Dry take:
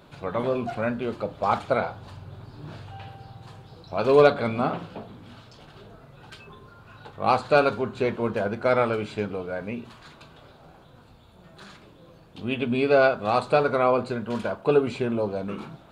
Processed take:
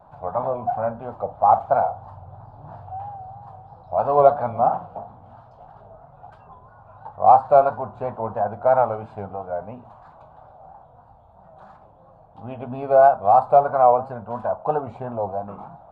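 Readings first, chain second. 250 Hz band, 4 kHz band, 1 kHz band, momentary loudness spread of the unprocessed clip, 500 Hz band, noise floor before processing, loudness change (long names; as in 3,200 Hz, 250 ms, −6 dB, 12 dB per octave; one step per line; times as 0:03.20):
−8.0 dB, below −20 dB, +9.0 dB, 22 LU, +2.5 dB, −52 dBFS, +4.0 dB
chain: drawn EQ curve 100 Hz 0 dB, 380 Hz −12 dB, 760 Hz +13 dB, 2,200 Hz −19 dB, 4,300 Hz −23 dB
pitch vibrato 3 Hz 77 cents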